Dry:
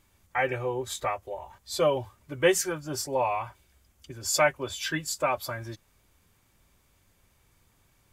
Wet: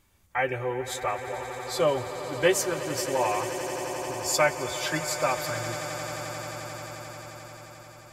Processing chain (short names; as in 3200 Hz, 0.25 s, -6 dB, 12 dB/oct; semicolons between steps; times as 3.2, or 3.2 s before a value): swelling echo 88 ms, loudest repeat 8, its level -15.5 dB